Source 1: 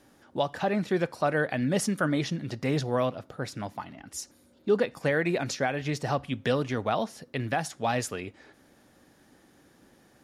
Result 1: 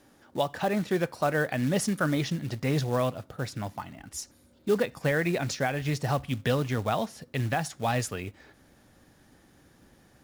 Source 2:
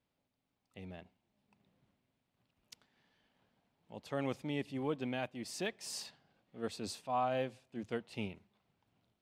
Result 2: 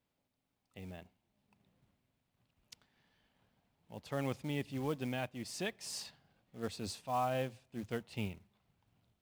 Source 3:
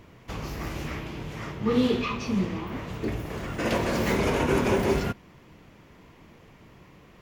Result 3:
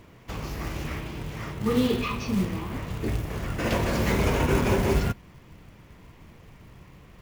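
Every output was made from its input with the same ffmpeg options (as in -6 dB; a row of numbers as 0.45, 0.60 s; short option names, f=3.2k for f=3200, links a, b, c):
-af "asubboost=boost=2:cutoff=170,acrusher=bits=5:mode=log:mix=0:aa=0.000001"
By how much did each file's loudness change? 0.0, -0.5, +0.5 LU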